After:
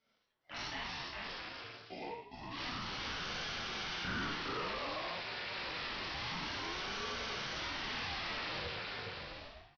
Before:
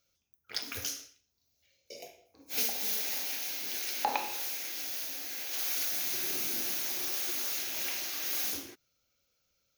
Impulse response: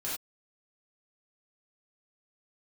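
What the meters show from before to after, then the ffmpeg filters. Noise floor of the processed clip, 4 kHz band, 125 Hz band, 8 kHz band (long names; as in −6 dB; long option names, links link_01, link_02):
−74 dBFS, −2.0 dB, can't be measured, −19.5 dB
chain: -filter_complex "[0:a]asplit=2[link_01][link_02];[link_02]highpass=frequency=720:poles=1,volume=17dB,asoftclip=type=tanh:threshold=-15.5dB[link_03];[link_01][link_03]amix=inputs=2:normalize=0,lowpass=frequency=1200:poles=1,volume=-6dB,aecho=1:1:410|656|803.6|892.2|945.3:0.631|0.398|0.251|0.158|0.1[link_04];[1:a]atrim=start_sample=2205,asetrate=41454,aresample=44100[link_05];[link_04][link_05]afir=irnorm=-1:irlink=0,aresample=11025,asoftclip=type=tanh:threshold=-31dB,aresample=44100,aeval=exprs='val(0)*sin(2*PI*480*n/s+480*0.65/0.28*sin(2*PI*0.28*n/s))':channel_layout=same,volume=-1dB"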